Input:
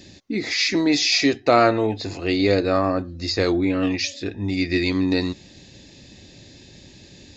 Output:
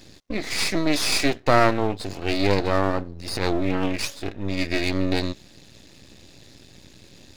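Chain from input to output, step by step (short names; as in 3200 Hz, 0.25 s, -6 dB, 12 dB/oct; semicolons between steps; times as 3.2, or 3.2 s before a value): 3.13–3.8 transient shaper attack -11 dB, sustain +7 dB; half-wave rectifier; gain +1 dB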